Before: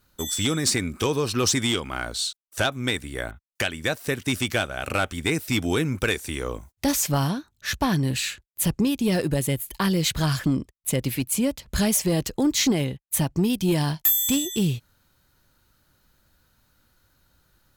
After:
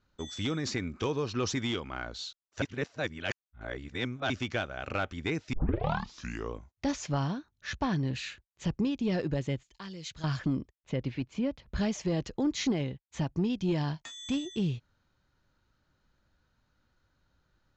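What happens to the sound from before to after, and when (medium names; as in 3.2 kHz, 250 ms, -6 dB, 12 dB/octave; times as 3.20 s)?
2.62–4.30 s: reverse
5.53 s: tape start 1.01 s
9.63–10.24 s: pre-emphasis filter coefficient 0.8
10.76–11.81 s: distance through air 130 m
whole clip: steep low-pass 7.2 kHz 96 dB/octave; treble shelf 4.7 kHz -11 dB; trim -7 dB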